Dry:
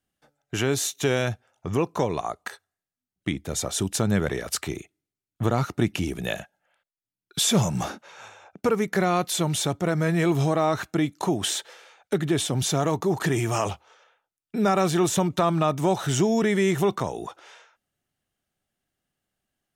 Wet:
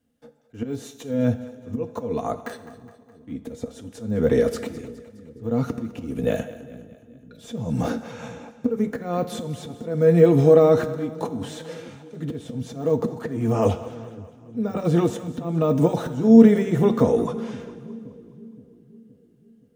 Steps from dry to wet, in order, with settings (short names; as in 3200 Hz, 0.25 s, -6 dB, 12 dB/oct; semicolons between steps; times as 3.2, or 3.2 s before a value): de-esser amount 100%; low shelf 230 Hz +5.5 dB; compressor 3:1, threshold -21 dBFS, peak gain reduction 6 dB; auto swell 0.369 s; notch comb 190 Hz; small resonant body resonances 240/470 Hz, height 18 dB, ringing for 65 ms; on a send: split-band echo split 380 Hz, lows 0.521 s, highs 0.208 s, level -16 dB; on the sum: two-slope reverb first 0.91 s, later 2.8 s, DRR 11.5 dB; gain +2.5 dB